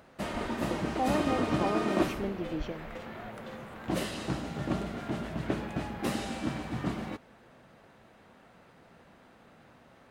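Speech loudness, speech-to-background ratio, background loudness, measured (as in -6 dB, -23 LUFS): -35.0 LUFS, -1.0 dB, -34.0 LUFS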